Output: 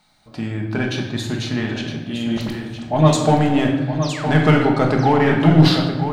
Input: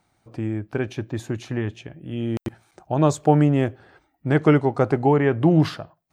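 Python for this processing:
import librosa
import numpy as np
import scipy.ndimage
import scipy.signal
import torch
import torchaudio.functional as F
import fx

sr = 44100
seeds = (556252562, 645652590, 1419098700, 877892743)

p1 = fx.graphic_eq_15(x, sr, hz=(100, 400, 4000), db=(-9, -9, 11))
p2 = np.clip(10.0 ** (22.0 / 20.0) * p1, -1.0, 1.0) / 10.0 ** (22.0 / 20.0)
p3 = p1 + F.gain(torch.from_numpy(p2), -5.0).numpy()
p4 = fx.dispersion(p3, sr, late='highs', ms=41.0, hz=2200.0, at=(2.27, 3.13))
p5 = fx.spec_paint(p4, sr, seeds[0], shape='fall', start_s=4.02, length_s=0.26, low_hz=690.0, high_hz=6600.0, level_db=-35.0)
p6 = p5 + fx.echo_single(p5, sr, ms=963, db=-9.0, dry=0)
p7 = fx.room_shoebox(p6, sr, seeds[1], volume_m3=650.0, walls='mixed', distance_m=1.4)
y = F.gain(torch.from_numpy(p7), 1.0).numpy()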